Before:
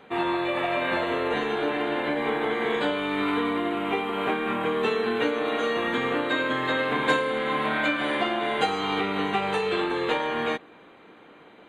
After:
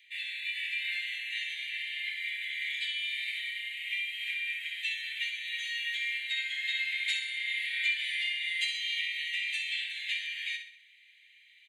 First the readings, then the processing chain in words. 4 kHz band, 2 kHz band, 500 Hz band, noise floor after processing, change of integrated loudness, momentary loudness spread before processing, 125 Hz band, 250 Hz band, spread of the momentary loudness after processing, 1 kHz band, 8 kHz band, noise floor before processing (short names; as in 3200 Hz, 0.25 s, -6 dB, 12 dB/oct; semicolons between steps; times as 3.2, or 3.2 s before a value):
+1.0 dB, -3.0 dB, under -40 dB, -60 dBFS, -6.0 dB, 2 LU, under -40 dB, under -40 dB, 5 LU, under -40 dB, n/a, -51 dBFS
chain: steep high-pass 1900 Hz 96 dB/oct; on a send: feedback echo 64 ms, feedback 43%, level -8 dB